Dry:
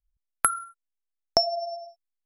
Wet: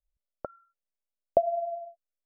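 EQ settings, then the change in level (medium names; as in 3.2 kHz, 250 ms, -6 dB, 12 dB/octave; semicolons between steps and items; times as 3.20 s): four-pole ladder low-pass 640 Hz, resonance 70%; +5.5 dB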